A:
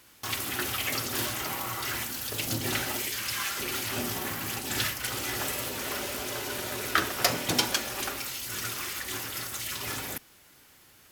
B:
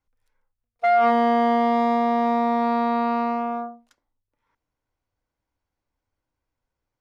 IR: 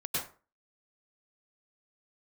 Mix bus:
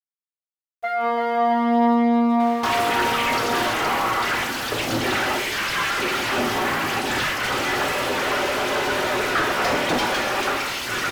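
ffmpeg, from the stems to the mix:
-filter_complex "[0:a]highshelf=frequency=6900:gain=-7,asplit=2[link_01][link_02];[link_02]highpass=frequency=720:poles=1,volume=33dB,asoftclip=type=tanh:threshold=-8dB[link_03];[link_01][link_03]amix=inputs=2:normalize=0,lowpass=frequency=1300:poles=1,volume=-6dB,adelay=2400,volume=-1.5dB[link_04];[1:a]equalizer=frequency=240:width_type=o:width=0.77:gain=3.5,flanger=delay=16.5:depth=2.9:speed=0.47,volume=0.5dB,asplit=2[link_05][link_06];[link_06]volume=-5dB,aecho=0:1:335|670|1005|1340|1675|2010|2345|2680:1|0.53|0.281|0.149|0.0789|0.0418|0.0222|0.0117[link_07];[link_04][link_05][link_07]amix=inputs=3:normalize=0,aeval=exprs='val(0)*gte(abs(val(0)),0.00531)':channel_layout=same"

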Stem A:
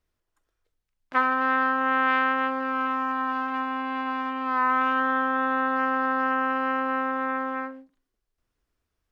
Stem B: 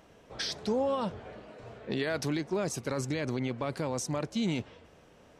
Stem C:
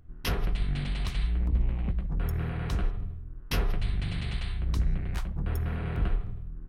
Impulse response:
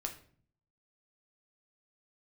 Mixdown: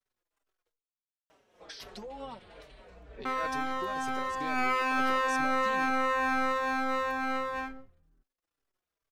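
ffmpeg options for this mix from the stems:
-filter_complex "[0:a]aeval=exprs='max(val(0),0)':channel_layout=same,volume=-1dB,asplit=3[link_01][link_02][link_03];[link_01]atrim=end=0.72,asetpts=PTS-STARTPTS,afade=type=out:start_time=0.716:duration=0.004:curve=hsin[link_04];[link_02]atrim=start=0.72:end=3.25,asetpts=PTS-STARTPTS,volume=0[link_05];[link_03]atrim=start=3.25,asetpts=PTS-STARTPTS,afade=type=in:duration=0.004:curve=hsin[link_06];[link_04][link_05][link_06]concat=n=3:v=0:a=1,asplit=2[link_07][link_08];[link_08]volume=-6.5dB[link_09];[1:a]alimiter=level_in=2dB:limit=-24dB:level=0:latency=1:release=262,volume=-2dB,tremolo=f=3.2:d=0.56,adelay=1300,volume=0dB[link_10];[2:a]adelay=1550,volume=-14.5dB[link_11];[3:a]atrim=start_sample=2205[link_12];[link_09][link_12]afir=irnorm=-1:irlink=0[link_13];[link_07][link_10][link_11][link_13]amix=inputs=4:normalize=0,bass=frequency=250:gain=-12,treble=frequency=4000:gain=-1,asplit=2[link_14][link_15];[link_15]adelay=4.7,afreqshift=-2.2[link_16];[link_14][link_16]amix=inputs=2:normalize=1"

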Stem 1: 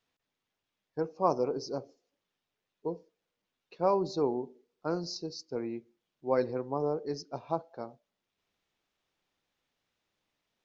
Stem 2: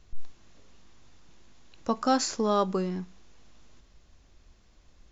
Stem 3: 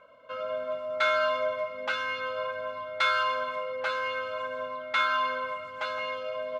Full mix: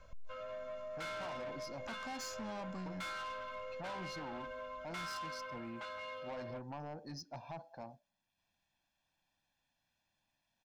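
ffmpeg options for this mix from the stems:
ffmpeg -i stem1.wav -i stem2.wav -i stem3.wav -filter_complex "[0:a]volume=-4dB[link_01];[1:a]volume=-8.5dB[link_02];[2:a]volume=-8dB[link_03];[link_01][link_02]amix=inputs=2:normalize=0,aecho=1:1:1.2:0.91,alimiter=level_in=3dB:limit=-24dB:level=0:latency=1:release=67,volume=-3dB,volume=0dB[link_04];[link_03][link_04]amix=inputs=2:normalize=0,asoftclip=type=tanh:threshold=-36dB,alimiter=level_in=15.5dB:limit=-24dB:level=0:latency=1:release=77,volume=-15.5dB" out.wav

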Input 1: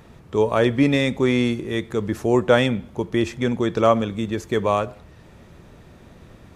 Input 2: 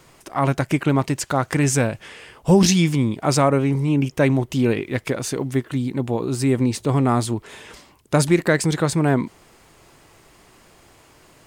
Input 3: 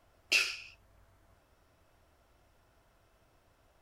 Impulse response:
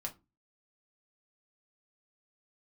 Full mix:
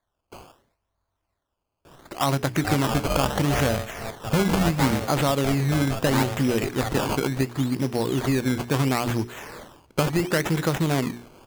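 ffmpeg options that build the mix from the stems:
-filter_complex "[0:a]aeval=exprs='val(0)*sgn(sin(2*PI*330*n/s))':channel_layout=same,adelay=2300,volume=-9.5dB[link_01];[1:a]bandreject=frequency=60:width_type=h:width=6,bandreject=frequency=120:width_type=h:width=6,bandreject=frequency=180:width_type=h:width=6,bandreject=frequency=240:width_type=h:width=6,bandreject=frequency=300:width_type=h:width=6,bandreject=frequency=360:width_type=h:width=6,bandreject=frequency=420:width_type=h:width=6,acompressor=threshold=-22dB:ratio=4,acrusher=bits=4:mode=log:mix=0:aa=0.000001,adelay=1850,volume=2dB[link_02];[2:a]equalizer=frequency=1000:width_type=o:width=0.67:gain=7,equalizer=frequency=2500:width_type=o:width=0.67:gain=-11,equalizer=frequency=6300:width_type=o:width=0.67:gain=10,volume=-14.5dB[link_03];[link_01][link_02][link_03]amix=inputs=3:normalize=0,acrusher=samples=16:mix=1:aa=0.000001:lfo=1:lforange=16:lforate=0.73"

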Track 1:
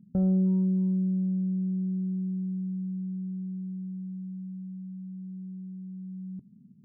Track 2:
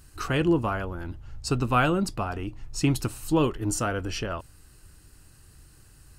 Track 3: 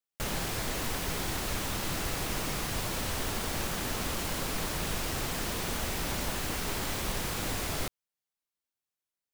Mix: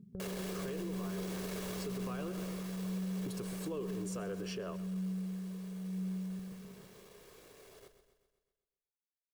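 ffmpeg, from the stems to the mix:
ffmpeg -i stem1.wav -i stem2.wav -i stem3.wav -filter_complex "[0:a]acompressor=threshold=-36dB:ratio=6,aphaser=in_gain=1:out_gain=1:delay=2:decay=0.44:speed=1:type=triangular,volume=-5.5dB,asplit=2[link_01][link_02];[link_02]volume=-3.5dB[link_03];[1:a]adelay=350,volume=-11.5dB,asplit=3[link_04][link_05][link_06];[link_04]atrim=end=2.32,asetpts=PTS-STARTPTS,afade=type=out:start_time=2.316:duration=0.004:curve=hsin[link_07];[link_05]atrim=start=2.32:end=3.26,asetpts=PTS-STARTPTS,volume=0[link_08];[link_06]atrim=start=3.26,asetpts=PTS-STARTPTS,afade=type=in:duration=0.004:curve=hsin[link_09];[link_07][link_08][link_09]concat=n=3:v=0:a=1,asplit=2[link_10][link_11];[link_11]volume=-19.5dB[link_12];[2:a]asoftclip=type=tanh:threshold=-33.5dB,volume=-2.5dB,afade=type=out:start_time=1.75:duration=0.78:silence=0.298538,afade=type=out:start_time=3.94:duration=0.54:silence=0.334965,asplit=2[link_13][link_14];[link_14]volume=-11dB[link_15];[link_10][link_13]amix=inputs=2:normalize=0,highpass=170,acompressor=threshold=-37dB:ratio=6,volume=0dB[link_16];[link_03][link_12][link_15]amix=inputs=3:normalize=0,aecho=0:1:128|256|384|512|640|768|896|1024:1|0.54|0.292|0.157|0.085|0.0459|0.0248|0.0134[link_17];[link_01][link_16][link_17]amix=inputs=3:normalize=0,equalizer=frequency=410:width_type=o:width=0.5:gain=14.5,aecho=1:1:1.8:0.36,alimiter=level_in=7.5dB:limit=-24dB:level=0:latency=1:release=59,volume=-7.5dB" out.wav

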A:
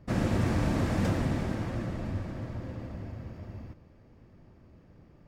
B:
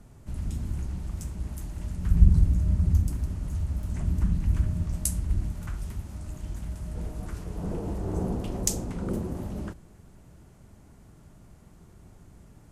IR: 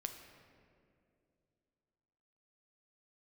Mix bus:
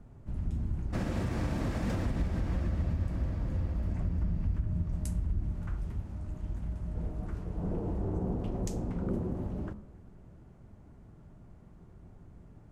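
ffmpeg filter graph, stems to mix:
-filter_complex "[0:a]adelay=850,volume=-3dB[link_01];[1:a]lowpass=frequency=1100:poles=1,bandreject=frequency=69.28:width_type=h:width=4,bandreject=frequency=138.56:width_type=h:width=4,bandreject=frequency=207.84:width_type=h:width=4,bandreject=frequency=277.12:width_type=h:width=4,bandreject=frequency=346.4:width_type=h:width=4,bandreject=frequency=415.68:width_type=h:width=4,bandreject=frequency=484.96:width_type=h:width=4,bandreject=frequency=554.24:width_type=h:width=4,bandreject=frequency=623.52:width_type=h:width=4,bandreject=frequency=692.8:width_type=h:width=4,bandreject=frequency=762.08:width_type=h:width=4,bandreject=frequency=831.36:width_type=h:width=4,bandreject=frequency=900.64:width_type=h:width=4,bandreject=frequency=969.92:width_type=h:width=4,bandreject=frequency=1039.2:width_type=h:width=4,bandreject=frequency=1108.48:width_type=h:width=4,bandreject=frequency=1177.76:width_type=h:width=4,bandreject=frequency=1247.04:width_type=h:width=4,bandreject=frequency=1316.32:width_type=h:width=4,acompressor=threshold=-25dB:ratio=4,volume=-2dB,asplit=2[link_02][link_03];[link_03]volume=-12dB[link_04];[2:a]atrim=start_sample=2205[link_05];[link_04][link_05]afir=irnorm=-1:irlink=0[link_06];[link_01][link_02][link_06]amix=inputs=3:normalize=0,alimiter=limit=-22.5dB:level=0:latency=1:release=140"

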